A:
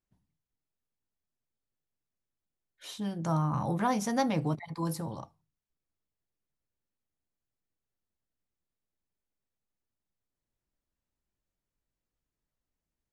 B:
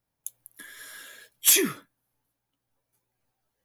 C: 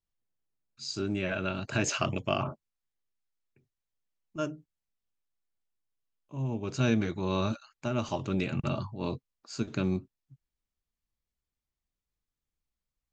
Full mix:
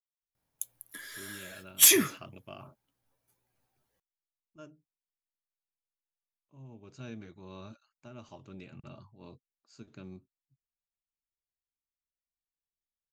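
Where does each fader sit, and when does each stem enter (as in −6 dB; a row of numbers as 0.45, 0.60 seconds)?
muted, 0.0 dB, −17.5 dB; muted, 0.35 s, 0.20 s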